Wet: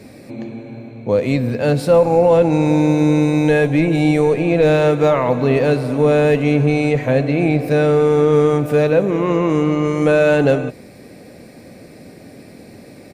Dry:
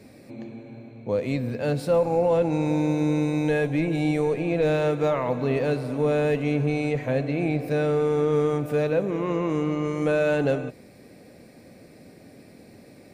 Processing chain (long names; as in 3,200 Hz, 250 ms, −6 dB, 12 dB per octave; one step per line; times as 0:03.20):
downsampling to 32,000 Hz
level +9 dB